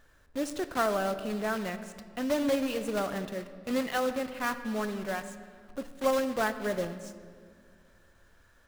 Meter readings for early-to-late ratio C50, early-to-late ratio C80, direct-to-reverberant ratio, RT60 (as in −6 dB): 11.5 dB, 12.5 dB, 9.5 dB, 2.0 s